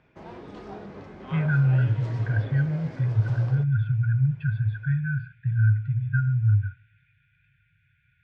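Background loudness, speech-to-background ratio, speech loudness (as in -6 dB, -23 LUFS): -41.0 LUFS, 16.5 dB, -24.5 LUFS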